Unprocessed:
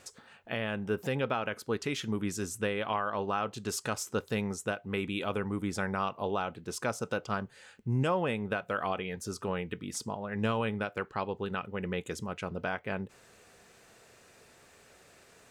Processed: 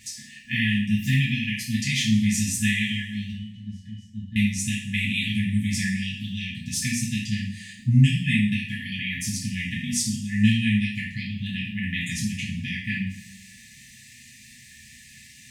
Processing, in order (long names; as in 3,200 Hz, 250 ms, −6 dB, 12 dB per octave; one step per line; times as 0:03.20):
0:03.31–0:04.36: resonances in every octave F#, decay 0.16 s
coupled-rooms reverb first 0.56 s, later 1.6 s, DRR −6.5 dB
brick-wall band-stop 260–1,700 Hz
level +5.5 dB